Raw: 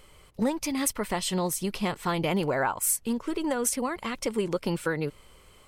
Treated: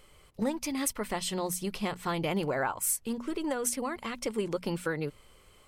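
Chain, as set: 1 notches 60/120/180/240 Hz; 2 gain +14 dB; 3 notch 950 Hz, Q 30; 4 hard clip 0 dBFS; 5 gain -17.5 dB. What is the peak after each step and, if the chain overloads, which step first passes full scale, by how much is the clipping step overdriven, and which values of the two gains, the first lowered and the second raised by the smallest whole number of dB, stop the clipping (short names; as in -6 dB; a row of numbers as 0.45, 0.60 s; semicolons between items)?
-10.5, +3.5, +3.5, 0.0, -17.5 dBFS; step 2, 3.5 dB; step 2 +10 dB, step 5 -13.5 dB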